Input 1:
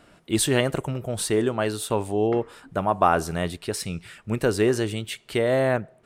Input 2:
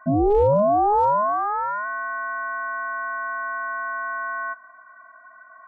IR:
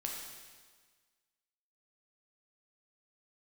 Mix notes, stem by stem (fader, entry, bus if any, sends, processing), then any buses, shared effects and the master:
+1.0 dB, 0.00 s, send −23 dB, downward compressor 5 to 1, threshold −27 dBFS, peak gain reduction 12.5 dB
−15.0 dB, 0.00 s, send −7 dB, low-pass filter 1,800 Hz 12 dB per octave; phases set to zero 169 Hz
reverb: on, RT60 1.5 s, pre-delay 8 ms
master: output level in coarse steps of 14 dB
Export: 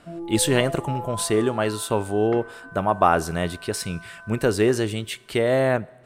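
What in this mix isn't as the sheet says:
stem 1: missing downward compressor 5 to 1, threshold −27 dBFS, peak gain reduction 12.5 dB
master: missing output level in coarse steps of 14 dB

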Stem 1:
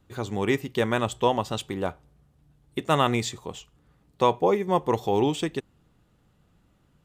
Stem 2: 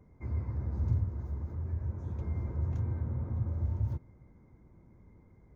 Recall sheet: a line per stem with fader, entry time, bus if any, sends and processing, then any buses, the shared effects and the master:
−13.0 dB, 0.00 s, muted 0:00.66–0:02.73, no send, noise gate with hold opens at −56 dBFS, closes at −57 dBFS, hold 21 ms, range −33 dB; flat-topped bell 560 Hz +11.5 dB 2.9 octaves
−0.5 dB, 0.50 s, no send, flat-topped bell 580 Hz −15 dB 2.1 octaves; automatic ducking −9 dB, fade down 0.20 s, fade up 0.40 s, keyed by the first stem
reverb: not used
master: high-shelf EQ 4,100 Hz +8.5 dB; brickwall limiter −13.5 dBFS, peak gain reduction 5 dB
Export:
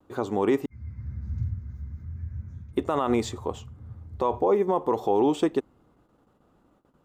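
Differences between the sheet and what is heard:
stem 1 −13.0 dB → −5.0 dB
master: missing high-shelf EQ 4,100 Hz +8.5 dB

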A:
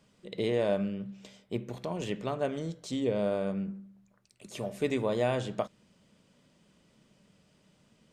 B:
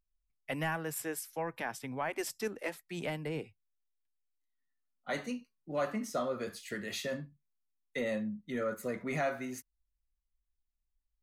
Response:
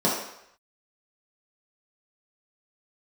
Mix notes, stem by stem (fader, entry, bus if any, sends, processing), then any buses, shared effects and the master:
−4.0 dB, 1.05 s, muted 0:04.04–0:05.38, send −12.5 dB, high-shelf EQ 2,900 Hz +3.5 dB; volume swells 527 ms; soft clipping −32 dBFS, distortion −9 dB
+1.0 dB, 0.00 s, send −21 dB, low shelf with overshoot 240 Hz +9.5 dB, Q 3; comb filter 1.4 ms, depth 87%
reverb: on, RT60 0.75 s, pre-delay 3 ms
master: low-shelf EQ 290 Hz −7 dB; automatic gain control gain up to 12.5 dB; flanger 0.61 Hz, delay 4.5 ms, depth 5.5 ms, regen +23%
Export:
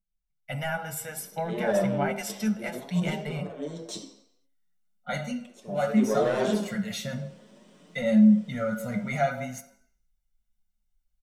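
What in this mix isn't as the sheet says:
stem A: missing high-shelf EQ 2,900 Hz +3.5 dB
stem B +1.0 dB → −7.5 dB

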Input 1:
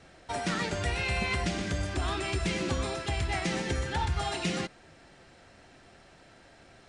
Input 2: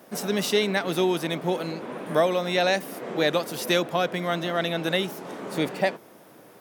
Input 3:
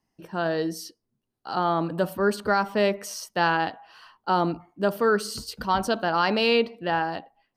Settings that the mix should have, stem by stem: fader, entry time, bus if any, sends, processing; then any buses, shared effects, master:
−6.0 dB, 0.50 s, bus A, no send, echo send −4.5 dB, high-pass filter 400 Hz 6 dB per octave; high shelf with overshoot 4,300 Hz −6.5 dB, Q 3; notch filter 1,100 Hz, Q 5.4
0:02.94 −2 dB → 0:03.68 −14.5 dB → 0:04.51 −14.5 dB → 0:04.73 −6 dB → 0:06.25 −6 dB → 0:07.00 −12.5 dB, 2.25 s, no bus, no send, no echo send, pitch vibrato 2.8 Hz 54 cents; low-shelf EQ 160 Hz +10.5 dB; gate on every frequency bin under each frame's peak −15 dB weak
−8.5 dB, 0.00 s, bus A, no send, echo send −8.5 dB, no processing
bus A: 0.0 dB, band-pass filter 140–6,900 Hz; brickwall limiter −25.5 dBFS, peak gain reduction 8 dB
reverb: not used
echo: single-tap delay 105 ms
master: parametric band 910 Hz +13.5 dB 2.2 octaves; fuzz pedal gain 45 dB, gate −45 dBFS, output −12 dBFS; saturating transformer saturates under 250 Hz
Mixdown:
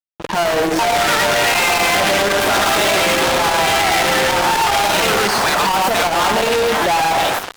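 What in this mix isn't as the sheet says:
stem 1 −6.0 dB → +4.5 dB
stem 2: missing pitch vibrato 2.8 Hz 54 cents

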